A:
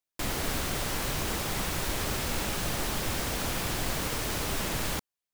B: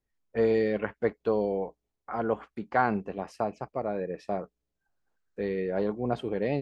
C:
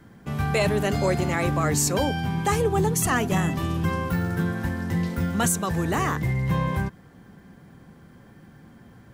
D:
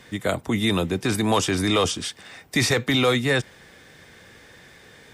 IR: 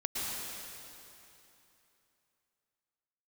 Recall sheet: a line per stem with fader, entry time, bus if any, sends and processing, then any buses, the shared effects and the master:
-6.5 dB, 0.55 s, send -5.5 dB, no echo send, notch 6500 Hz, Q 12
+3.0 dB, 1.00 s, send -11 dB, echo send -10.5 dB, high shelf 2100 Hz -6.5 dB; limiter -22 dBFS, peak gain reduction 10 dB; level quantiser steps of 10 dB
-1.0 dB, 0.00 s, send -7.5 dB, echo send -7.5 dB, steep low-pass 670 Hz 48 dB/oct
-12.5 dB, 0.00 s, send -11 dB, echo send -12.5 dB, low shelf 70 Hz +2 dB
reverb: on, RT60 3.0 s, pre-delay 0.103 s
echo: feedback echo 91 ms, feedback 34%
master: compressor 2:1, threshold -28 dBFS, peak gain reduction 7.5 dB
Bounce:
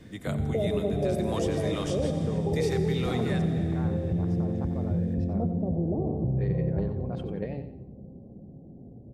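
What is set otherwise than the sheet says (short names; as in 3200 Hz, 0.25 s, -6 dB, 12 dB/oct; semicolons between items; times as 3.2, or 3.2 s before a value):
stem A: muted; stem B: send off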